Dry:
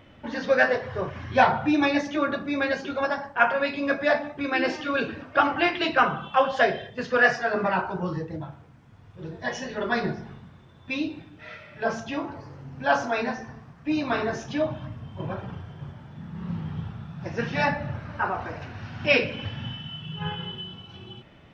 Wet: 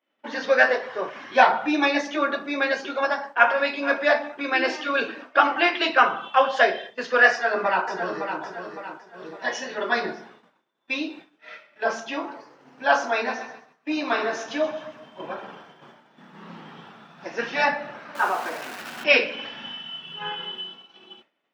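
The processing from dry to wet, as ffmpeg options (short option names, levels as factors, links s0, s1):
-filter_complex "[0:a]asplit=2[s0][s1];[s1]afade=t=in:st=2.91:d=0.01,afade=t=out:st=3.67:d=0.01,aecho=0:1:460|920:0.188365|0.0188365[s2];[s0][s2]amix=inputs=2:normalize=0,asplit=2[s3][s4];[s4]afade=t=in:st=7.31:d=0.01,afade=t=out:st=8.41:d=0.01,aecho=0:1:560|1120|1680|2240|2800:0.421697|0.189763|0.0853935|0.0384271|0.0172922[s5];[s3][s5]amix=inputs=2:normalize=0,asplit=3[s6][s7][s8];[s6]afade=t=out:st=13.27:d=0.02[s9];[s7]aecho=1:1:129|258|387|516|645:0.224|0.103|0.0474|0.0218|0.01,afade=t=in:st=13.27:d=0.02,afade=t=out:st=15.7:d=0.02[s10];[s8]afade=t=in:st=15.7:d=0.02[s11];[s9][s10][s11]amix=inputs=3:normalize=0,asettb=1/sr,asplit=3[s12][s13][s14];[s12]atrim=end=18.154[s15];[s13]atrim=start=18.15:end=19.04,asetpts=PTS-STARTPTS,afade=t=in:d=0.004:c=qsin,afade=t=out:st=0.886:d=0.004:c=qsin,aeval=exprs='val(0)+0.5*0.0168*sgn(val(0))':c=same[s16];[s14]atrim=start=19.036[s17];[s15][s16]acrossfade=d=0.004:c1=hsin:c2=qsin[s18];[s18][s17]acrossfade=d=0.004:c1=qsin:c2=hsin,agate=range=0.0224:threshold=0.0141:ratio=3:detection=peak,highpass=f=230:w=0.5412,highpass=f=230:w=1.3066,lowshelf=f=310:g=-10.5,volume=1.58"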